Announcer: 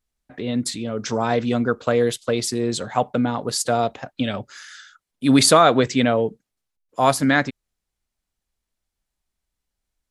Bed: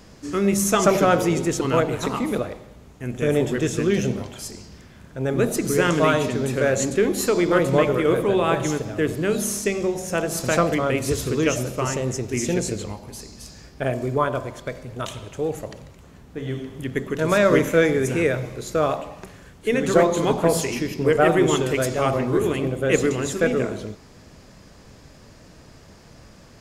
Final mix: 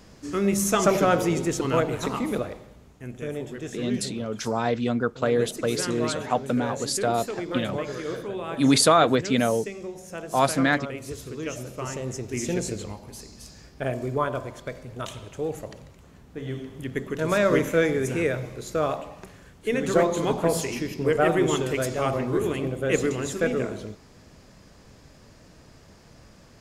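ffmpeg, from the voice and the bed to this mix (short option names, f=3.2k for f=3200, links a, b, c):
-filter_complex "[0:a]adelay=3350,volume=-4dB[a];[1:a]volume=5.5dB,afade=t=out:st=2.61:d=0.72:silence=0.334965,afade=t=in:st=11.38:d=1.17:silence=0.375837[b];[a][b]amix=inputs=2:normalize=0"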